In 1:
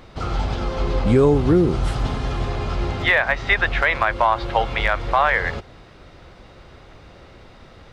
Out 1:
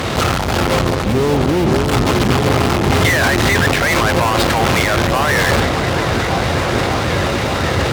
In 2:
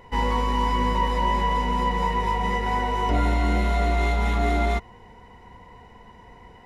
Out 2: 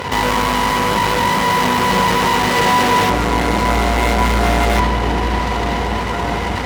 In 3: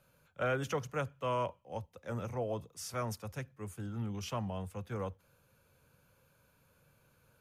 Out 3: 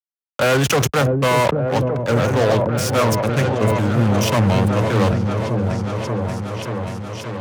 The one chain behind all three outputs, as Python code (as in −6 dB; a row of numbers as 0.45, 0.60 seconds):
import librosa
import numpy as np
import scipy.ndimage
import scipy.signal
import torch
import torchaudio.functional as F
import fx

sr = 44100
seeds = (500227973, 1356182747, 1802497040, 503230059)

p1 = scipy.ndimage.median_filter(x, 3, mode='constant')
p2 = np.where(np.abs(p1) >= 10.0 ** (-21.5 / 20.0), p1, 0.0)
p3 = p1 + F.gain(torch.from_numpy(p2), -6.5).numpy()
p4 = fx.over_compress(p3, sr, threshold_db=-24.0, ratio=-1.0)
p5 = fx.fuzz(p4, sr, gain_db=39.0, gate_db=-45.0)
p6 = scipy.signal.sosfilt(scipy.signal.butter(4, 70.0, 'highpass', fs=sr, output='sos'), p5)
p7 = p6 + fx.echo_opening(p6, sr, ms=584, hz=400, octaves=1, feedback_pct=70, wet_db=-3, dry=0)
y = fx.sustainer(p7, sr, db_per_s=30.0)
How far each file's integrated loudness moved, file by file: +5.0, +8.0, +20.0 LU